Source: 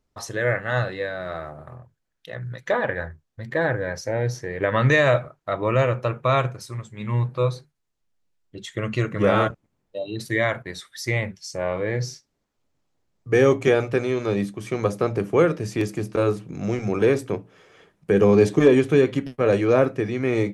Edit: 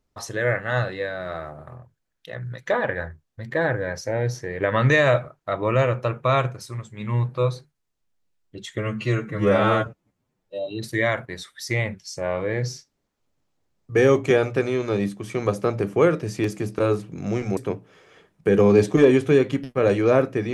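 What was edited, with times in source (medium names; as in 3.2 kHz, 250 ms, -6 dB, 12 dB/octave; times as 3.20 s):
8.78–10.04 s: stretch 1.5×
16.94–17.20 s: delete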